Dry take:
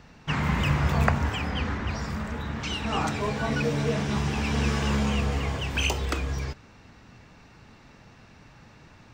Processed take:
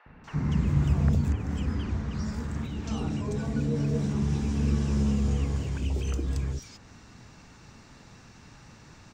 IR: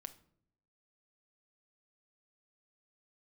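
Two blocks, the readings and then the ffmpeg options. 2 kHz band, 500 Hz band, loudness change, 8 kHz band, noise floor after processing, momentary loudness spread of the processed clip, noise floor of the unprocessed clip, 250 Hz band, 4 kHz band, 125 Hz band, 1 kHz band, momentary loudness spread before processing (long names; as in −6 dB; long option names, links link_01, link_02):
−14.0 dB, −6.0 dB, −1.5 dB, −6.5 dB, −52 dBFS, 8 LU, −53 dBFS, +0.5 dB, −12.5 dB, +1.0 dB, −12.5 dB, 8 LU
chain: -filter_complex "[0:a]equalizer=frequency=7200:width_type=o:width=1:gain=8,acrossover=split=450[link_01][link_02];[link_02]acompressor=threshold=-44dB:ratio=6[link_03];[link_01][link_03]amix=inputs=2:normalize=0,acrossover=split=610|2400[link_04][link_05][link_06];[link_04]adelay=60[link_07];[link_06]adelay=240[link_08];[link_07][link_05][link_08]amix=inputs=3:normalize=0,volume=1dB"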